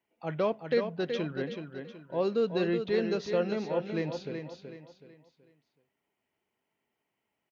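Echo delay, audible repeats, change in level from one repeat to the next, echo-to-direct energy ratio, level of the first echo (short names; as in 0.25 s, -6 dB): 0.375 s, 4, -9.0 dB, -6.5 dB, -7.0 dB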